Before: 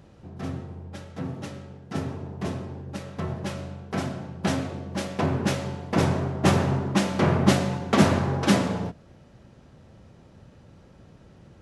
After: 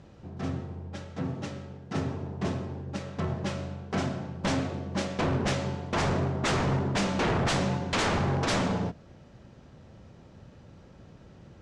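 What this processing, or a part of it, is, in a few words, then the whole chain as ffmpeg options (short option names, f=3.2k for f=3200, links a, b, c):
synthesiser wavefolder: -af "aeval=exprs='0.0891*(abs(mod(val(0)/0.0891+3,4)-2)-1)':c=same,lowpass=f=7.9k:w=0.5412,lowpass=f=7.9k:w=1.3066"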